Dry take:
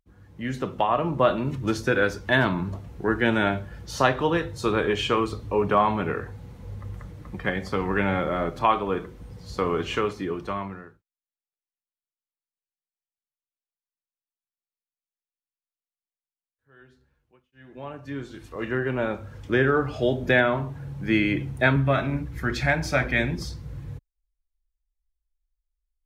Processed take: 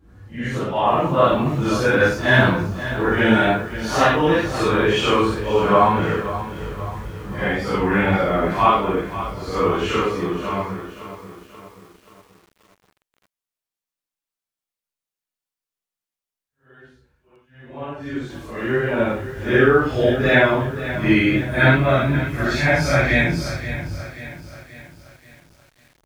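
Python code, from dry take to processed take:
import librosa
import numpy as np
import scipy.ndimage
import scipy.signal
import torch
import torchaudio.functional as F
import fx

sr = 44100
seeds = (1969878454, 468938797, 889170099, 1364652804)

y = fx.phase_scramble(x, sr, seeds[0], window_ms=200)
y = fx.wow_flutter(y, sr, seeds[1], rate_hz=2.1, depth_cents=29.0)
y = fx.echo_crushed(y, sr, ms=531, feedback_pct=55, bits=8, wet_db=-12.5)
y = F.gain(torch.from_numpy(y), 6.0).numpy()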